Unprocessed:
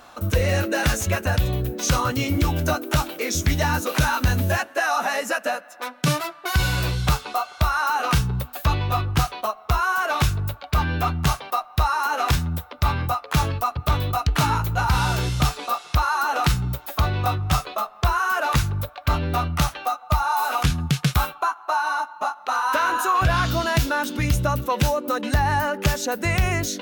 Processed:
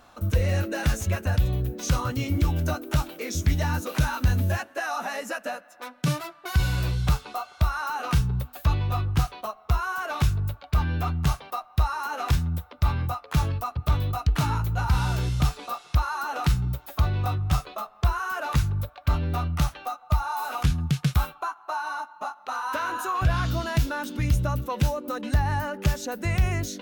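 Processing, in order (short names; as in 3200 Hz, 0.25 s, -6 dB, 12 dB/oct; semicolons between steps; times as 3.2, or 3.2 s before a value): low shelf 210 Hz +8.5 dB; gain -8 dB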